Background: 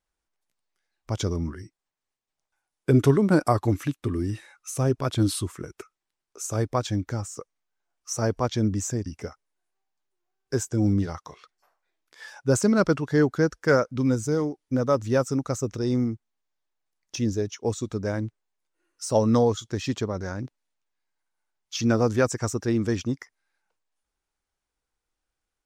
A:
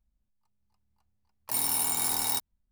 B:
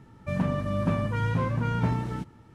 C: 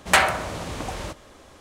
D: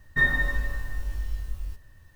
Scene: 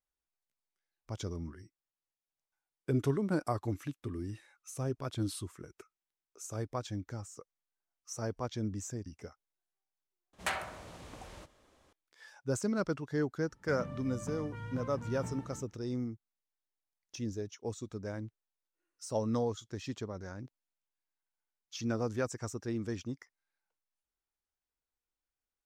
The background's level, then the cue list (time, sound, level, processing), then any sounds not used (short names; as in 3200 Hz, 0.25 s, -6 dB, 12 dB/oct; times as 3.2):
background -12 dB
10.33 replace with C -17.5 dB
13.4 add B -16 dB
not used: A, D